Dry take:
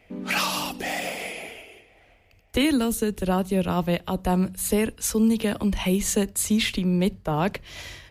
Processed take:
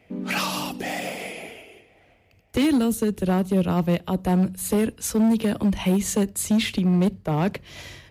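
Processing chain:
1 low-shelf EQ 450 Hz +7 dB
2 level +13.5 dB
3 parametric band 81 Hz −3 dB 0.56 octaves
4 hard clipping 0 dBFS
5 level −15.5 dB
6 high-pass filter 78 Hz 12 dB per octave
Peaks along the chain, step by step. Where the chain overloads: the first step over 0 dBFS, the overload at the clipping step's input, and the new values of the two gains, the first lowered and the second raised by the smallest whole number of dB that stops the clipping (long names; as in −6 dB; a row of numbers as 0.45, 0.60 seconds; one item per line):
−7.0, +6.5, +7.0, 0.0, −15.5, −11.5 dBFS
step 2, 7.0 dB
step 2 +6.5 dB, step 5 −8.5 dB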